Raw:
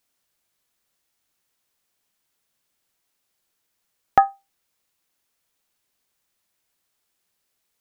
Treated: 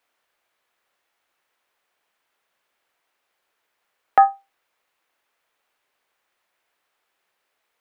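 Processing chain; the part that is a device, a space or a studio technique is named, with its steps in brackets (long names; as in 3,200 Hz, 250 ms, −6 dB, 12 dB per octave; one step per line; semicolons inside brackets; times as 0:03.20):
DJ mixer with the lows and highs turned down (three-way crossover with the lows and the highs turned down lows −16 dB, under 390 Hz, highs −15 dB, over 2,900 Hz; brickwall limiter −13 dBFS, peak gain reduction 9.5 dB)
level +9 dB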